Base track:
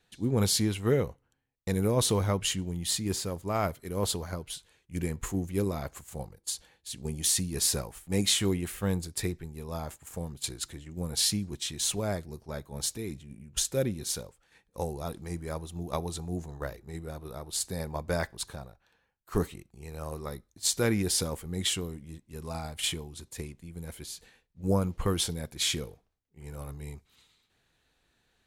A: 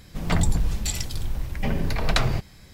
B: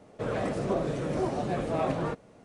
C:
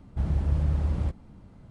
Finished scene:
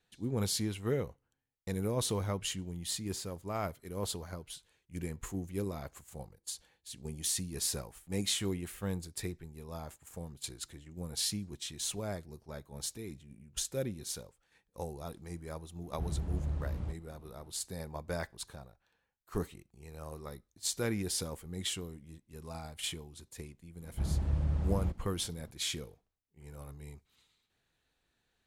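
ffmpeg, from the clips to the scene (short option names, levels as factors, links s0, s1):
-filter_complex "[3:a]asplit=2[s0][s1];[0:a]volume=0.447[s2];[s0]atrim=end=1.7,asetpts=PTS-STARTPTS,volume=0.316,afade=t=in:d=0.004:c=hsin,afade=t=out:st=1.696:d=0.004:c=hsin,adelay=15820[s3];[s1]atrim=end=1.7,asetpts=PTS-STARTPTS,volume=0.501,afade=t=in:d=0.004:c=hsin,afade=t=out:st=1.696:d=0.004:c=hsin,adelay=23810[s4];[s2][s3][s4]amix=inputs=3:normalize=0"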